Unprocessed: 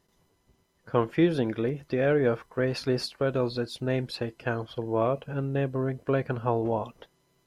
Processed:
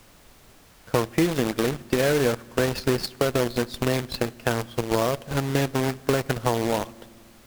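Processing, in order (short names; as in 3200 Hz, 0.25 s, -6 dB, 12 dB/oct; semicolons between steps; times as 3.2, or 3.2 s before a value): in parallel at -8 dB: Schmitt trigger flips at -29 dBFS; on the sum: companded quantiser 4-bit; added harmonics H 7 -21 dB, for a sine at -12 dBFS; compressor 5:1, threshold -26 dBFS, peak gain reduction 10.5 dB; on a send at -22.5 dB: reverb RT60 1.9 s, pre-delay 4 ms; on the sum: added noise pink -60 dBFS; gain +7.5 dB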